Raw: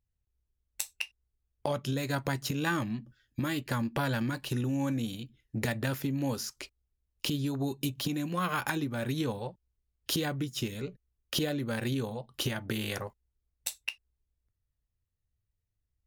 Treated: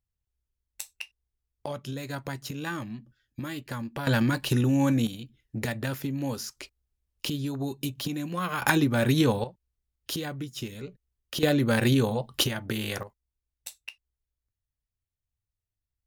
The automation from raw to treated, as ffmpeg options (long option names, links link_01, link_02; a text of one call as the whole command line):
ffmpeg -i in.wav -af "asetnsamples=nb_out_samples=441:pad=0,asendcmd='4.07 volume volume 7.5dB;5.07 volume volume 0.5dB;8.62 volume volume 9.5dB;9.44 volume volume -2dB;11.43 volume volume 9.5dB;12.44 volume volume 2.5dB;13.03 volume volume -6dB',volume=-3.5dB" out.wav